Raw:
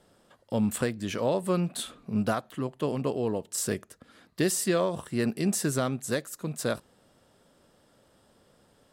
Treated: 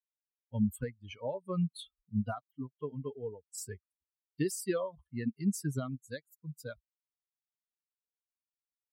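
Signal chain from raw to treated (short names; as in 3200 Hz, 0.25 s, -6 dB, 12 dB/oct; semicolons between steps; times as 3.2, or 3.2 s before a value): per-bin expansion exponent 3; low shelf 280 Hz +10 dB; gain -5.5 dB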